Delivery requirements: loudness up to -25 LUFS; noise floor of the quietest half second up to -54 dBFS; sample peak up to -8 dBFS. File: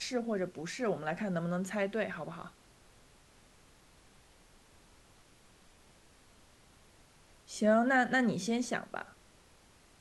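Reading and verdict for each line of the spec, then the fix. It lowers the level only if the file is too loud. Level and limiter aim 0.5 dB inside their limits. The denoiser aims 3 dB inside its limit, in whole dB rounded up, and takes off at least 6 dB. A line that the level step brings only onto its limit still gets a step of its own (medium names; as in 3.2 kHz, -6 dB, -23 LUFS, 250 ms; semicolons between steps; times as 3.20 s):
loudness -33.0 LUFS: pass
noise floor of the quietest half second -62 dBFS: pass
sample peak -16.5 dBFS: pass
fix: none needed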